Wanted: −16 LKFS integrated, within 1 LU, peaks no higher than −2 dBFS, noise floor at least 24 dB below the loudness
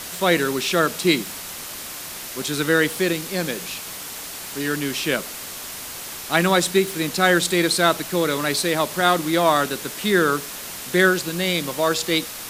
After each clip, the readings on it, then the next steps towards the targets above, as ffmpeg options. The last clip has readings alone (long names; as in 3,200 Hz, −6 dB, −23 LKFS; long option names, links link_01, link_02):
background noise floor −34 dBFS; target noise floor −46 dBFS; integrated loudness −21.5 LKFS; sample peak −3.0 dBFS; target loudness −16.0 LKFS
→ -af "afftdn=noise_reduction=12:noise_floor=-34"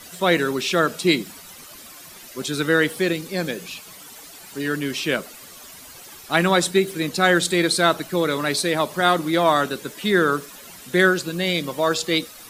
background noise floor −43 dBFS; target noise floor −45 dBFS
→ -af "afftdn=noise_reduction=6:noise_floor=-43"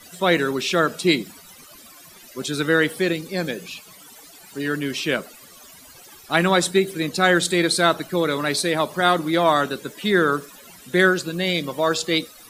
background noise floor −46 dBFS; integrated loudness −21.0 LKFS; sample peak −3.0 dBFS; target loudness −16.0 LKFS
→ -af "volume=5dB,alimiter=limit=-2dB:level=0:latency=1"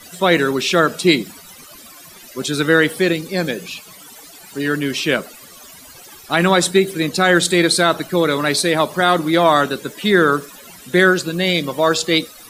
integrated loudness −16.5 LKFS; sample peak −2.0 dBFS; background noise floor −41 dBFS